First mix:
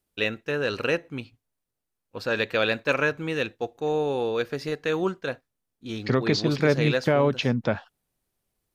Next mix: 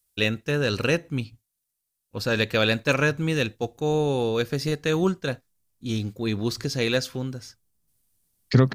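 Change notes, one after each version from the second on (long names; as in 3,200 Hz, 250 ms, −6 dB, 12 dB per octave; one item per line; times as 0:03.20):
second voice: entry +2.45 s
master: add bass and treble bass +11 dB, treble +11 dB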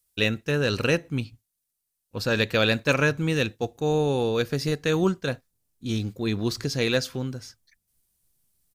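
second voice: entry +1.40 s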